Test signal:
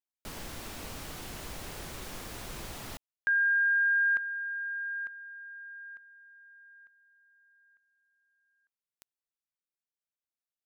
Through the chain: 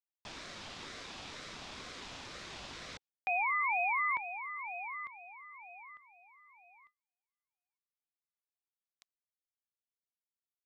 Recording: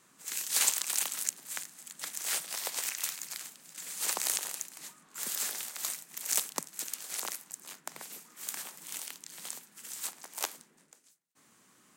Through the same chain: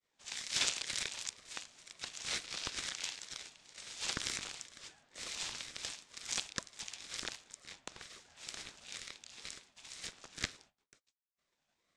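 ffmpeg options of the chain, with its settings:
ffmpeg -i in.wav -af "highpass=frequency=150:width=0.5412,highpass=frequency=150:width=1.3066,equalizer=frequency=230:width_type=q:width=4:gain=-6,equalizer=frequency=1800:width_type=q:width=4:gain=-6,equalizer=frequency=3000:width_type=q:width=4:gain=7,equalizer=frequency=4400:width_type=q:width=4:gain=3,lowpass=frequency=6400:width=0.5412,lowpass=frequency=6400:width=1.3066,agate=range=-33dB:threshold=-59dB:ratio=3:release=111:detection=rms,aeval=exprs='val(0)*sin(2*PI*650*n/s+650*0.4/2.1*sin(2*PI*2.1*n/s))':channel_layout=same" out.wav

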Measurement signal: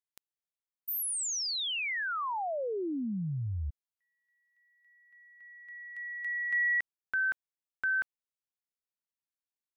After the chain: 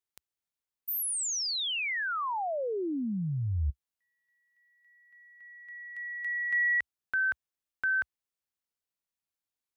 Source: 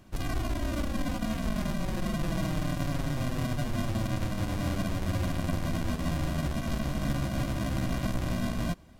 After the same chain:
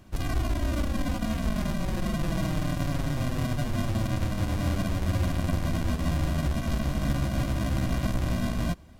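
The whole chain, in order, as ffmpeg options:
ffmpeg -i in.wav -af "equalizer=frequency=68:width_type=o:width=0.94:gain=5,volume=1.5dB" out.wav

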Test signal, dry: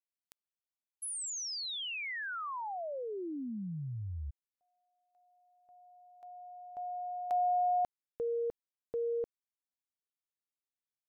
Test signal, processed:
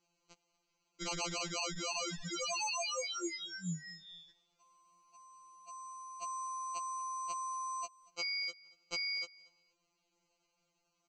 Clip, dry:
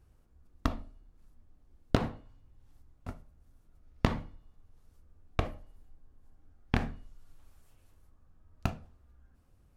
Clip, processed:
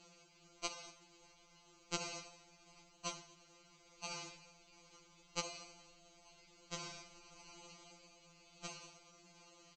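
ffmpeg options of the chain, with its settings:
ffmpeg -i in.wav -filter_complex "[0:a]highpass=frequency=560:poles=1,alimiter=limit=-20dB:level=0:latency=1:release=318,acompressor=threshold=-52dB:ratio=16:attack=14:release=148:knee=1:detection=rms,acrusher=samples=25:mix=1:aa=0.000001,crystalizer=i=8.5:c=0,asplit=2[link_01][link_02];[link_02]aecho=0:1:235|470:0.075|0.0135[link_03];[link_01][link_03]amix=inputs=2:normalize=0,aresample=16000,aresample=44100,afftfilt=real='re*2.83*eq(mod(b,8),0)':imag='im*2.83*eq(mod(b,8),0)':win_size=2048:overlap=0.75,volume=12dB" out.wav

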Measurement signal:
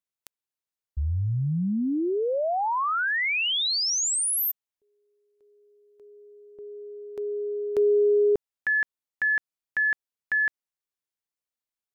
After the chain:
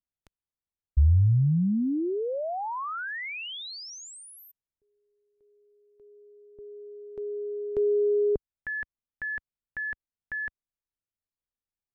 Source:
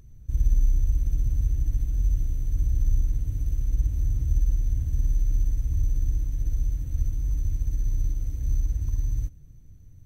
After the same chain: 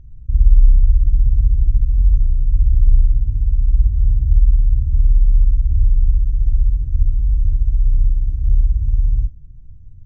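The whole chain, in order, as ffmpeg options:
ffmpeg -i in.wav -af "aemphasis=mode=reproduction:type=riaa,volume=-7dB" out.wav

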